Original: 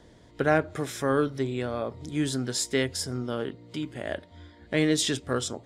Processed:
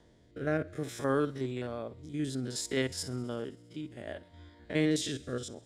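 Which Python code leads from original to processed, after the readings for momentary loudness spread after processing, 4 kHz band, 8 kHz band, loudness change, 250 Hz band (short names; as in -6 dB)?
14 LU, -8.0 dB, -8.0 dB, -6.0 dB, -5.0 dB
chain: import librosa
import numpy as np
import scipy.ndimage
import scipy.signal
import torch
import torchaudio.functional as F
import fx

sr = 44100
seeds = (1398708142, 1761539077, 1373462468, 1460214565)

y = fx.spec_steps(x, sr, hold_ms=50)
y = fx.rotary(y, sr, hz=0.6)
y = fx.echo_thinned(y, sr, ms=66, feedback_pct=83, hz=1200.0, wet_db=-23.5)
y = y * 10.0 ** (-3.5 / 20.0)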